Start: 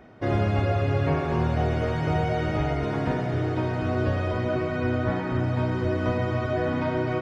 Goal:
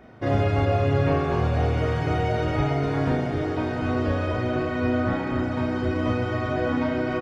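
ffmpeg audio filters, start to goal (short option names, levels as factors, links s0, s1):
-filter_complex "[0:a]asplit=2[s0][s1];[s1]adelay=36,volume=0.75[s2];[s0][s2]amix=inputs=2:normalize=0"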